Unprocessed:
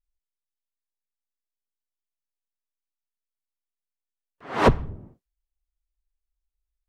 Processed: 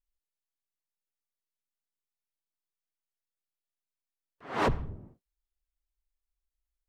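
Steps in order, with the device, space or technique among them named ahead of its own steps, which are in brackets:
limiter into clipper (brickwall limiter −11.5 dBFS, peak gain reduction 7 dB; hard clipping −14.5 dBFS, distortion −22 dB)
level −4.5 dB

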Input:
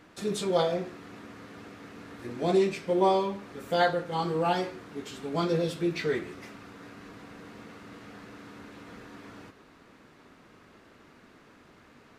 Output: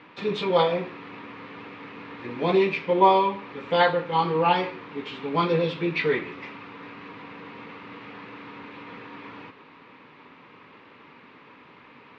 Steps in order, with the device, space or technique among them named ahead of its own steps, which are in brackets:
kitchen radio (loudspeaker in its box 160–3,600 Hz, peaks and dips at 210 Hz −6 dB, 350 Hz −6 dB, 670 Hz −9 dB, 970 Hz +6 dB, 1,500 Hz −5 dB, 2,400 Hz +5 dB)
level +7.5 dB

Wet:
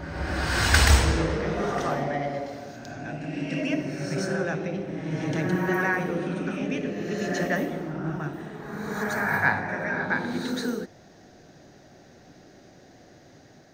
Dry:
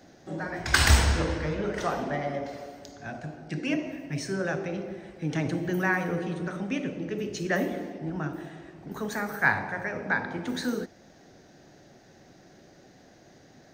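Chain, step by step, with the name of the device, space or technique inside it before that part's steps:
reverse reverb (reversed playback; convolution reverb RT60 1.9 s, pre-delay 94 ms, DRR 1 dB; reversed playback)

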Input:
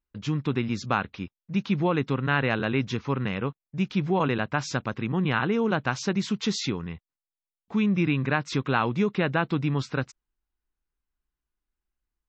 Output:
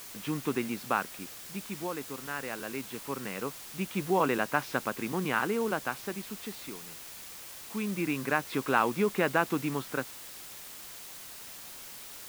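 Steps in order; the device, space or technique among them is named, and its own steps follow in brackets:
shortwave radio (band-pass filter 270–2,700 Hz; amplitude tremolo 0.22 Hz, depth 73%; white noise bed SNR 12 dB)

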